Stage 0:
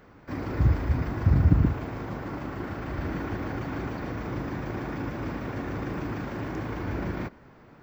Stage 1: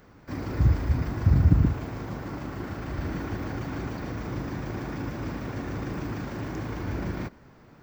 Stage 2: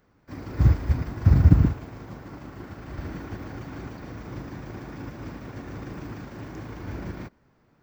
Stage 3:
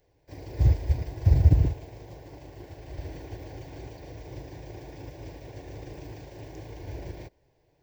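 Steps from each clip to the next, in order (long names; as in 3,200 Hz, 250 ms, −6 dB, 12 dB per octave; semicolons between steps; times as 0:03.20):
bass and treble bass +3 dB, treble +8 dB; level −2 dB
expander for the loud parts 1.5 to 1, over −44 dBFS; level +4.5 dB
phaser with its sweep stopped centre 530 Hz, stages 4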